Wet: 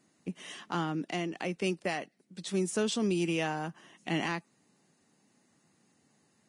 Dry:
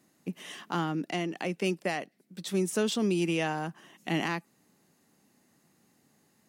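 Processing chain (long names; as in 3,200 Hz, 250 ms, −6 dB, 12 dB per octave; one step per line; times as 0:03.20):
level −2 dB
Ogg Vorbis 32 kbit/s 22,050 Hz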